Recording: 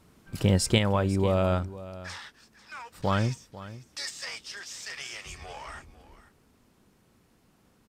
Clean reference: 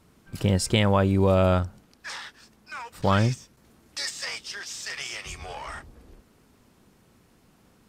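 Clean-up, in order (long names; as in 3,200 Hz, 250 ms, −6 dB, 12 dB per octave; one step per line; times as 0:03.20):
echo removal 495 ms −16.5 dB
level correction +4.5 dB, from 0:00.78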